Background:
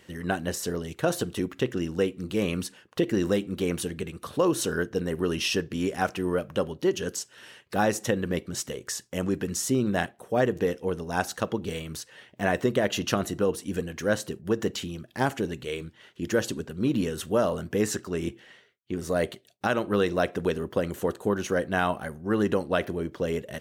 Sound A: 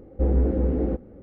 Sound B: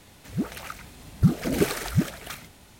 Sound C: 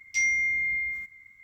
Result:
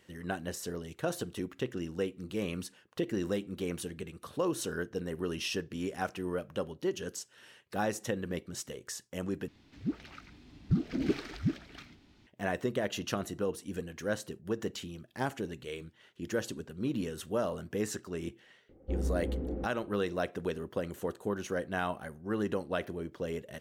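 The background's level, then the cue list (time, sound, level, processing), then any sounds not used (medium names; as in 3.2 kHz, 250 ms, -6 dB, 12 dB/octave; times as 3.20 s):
background -8 dB
9.48 s: replace with B -9.5 dB + FFT filter 180 Hz 0 dB, 300 Hz +8 dB, 520 Hz -7 dB, 2.7 kHz -1 dB, 4.9 kHz -2 dB, 10 kHz -22 dB
18.69 s: add A -12 dB
not used: C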